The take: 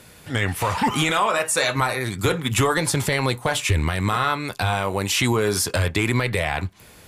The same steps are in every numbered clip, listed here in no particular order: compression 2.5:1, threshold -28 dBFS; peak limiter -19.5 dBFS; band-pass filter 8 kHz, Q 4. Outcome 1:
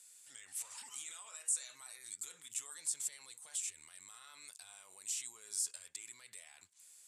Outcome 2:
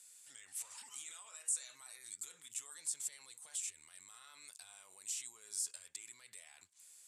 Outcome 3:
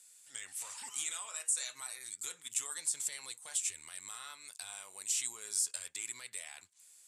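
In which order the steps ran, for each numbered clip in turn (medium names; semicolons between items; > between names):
peak limiter > band-pass filter > compression; peak limiter > compression > band-pass filter; band-pass filter > peak limiter > compression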